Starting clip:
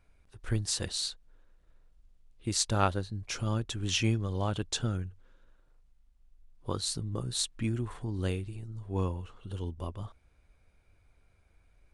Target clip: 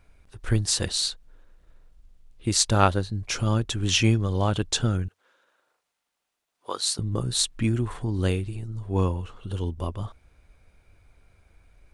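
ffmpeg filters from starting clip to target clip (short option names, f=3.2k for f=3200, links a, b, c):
-filter_complex "[0:a]asettb=1/sr,asplit=3[a][b][c];[a]atrim=end=5.084[d];[b]atrim=start=5.08:end=6.99,asetpts=PTS-STARTPTS,afade=t=in:d=0.004:c=qsin,afade=t=out:st=1.906:d=0.004:c=qsin,highpass=590[e];[c]atrim=start=6.986[f];[d][e]acrossfade=d=0.004:c1=hsin:c2=qsin[g];[g][f]acrossfade=d=0.004:c1=qsin:c2=hsin,volume=7.5dB"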